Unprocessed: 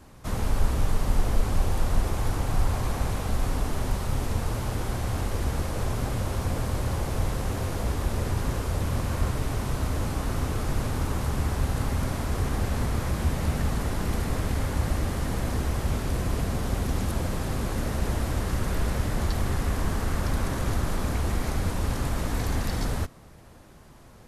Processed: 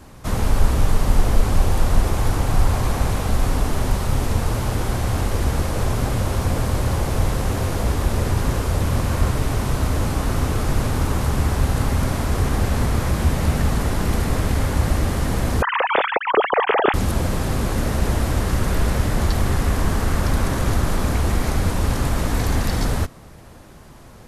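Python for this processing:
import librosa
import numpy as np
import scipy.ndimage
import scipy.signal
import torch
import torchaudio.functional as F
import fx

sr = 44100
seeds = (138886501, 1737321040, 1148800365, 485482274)

y = fx.sine_speech(x, sr, at=(15.62, 16.94))
y = y * 10.0 ** (7.0 / 20.0)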